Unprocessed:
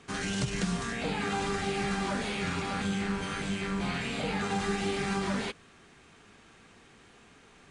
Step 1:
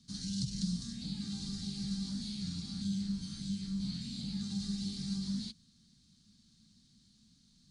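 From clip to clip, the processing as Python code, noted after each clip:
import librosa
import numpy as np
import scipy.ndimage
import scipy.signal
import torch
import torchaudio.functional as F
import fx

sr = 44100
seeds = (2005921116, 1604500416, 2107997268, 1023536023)

y = fx.curve_eq(x, sr, hz=(100.0, 220.0, 440.0, 2600.0, 4300.0, 7500.0), db=(0, 5, -29, -19, 10, -1))
y = y * 10.0 ** (-7.0 / 20.0)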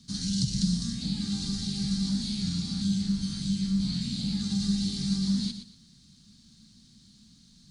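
y = fx.echo_feedback(x, sr, ms=119, feedback_pct=26, wet_db=-9.5)
y = y * 10.0 ** (8.5 / 20.0)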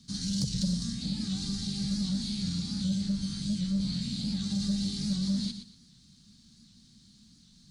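y = 10.0 ** (-18.5 / 20.0) * np.tanh(x / 10.0 ** (-18.5 / 20.0))
y = fx.record_warp(y, sr, rpm=78.0, depth_cents=100.0)
y = y * 10.0 ** (-1.5 / 20.0)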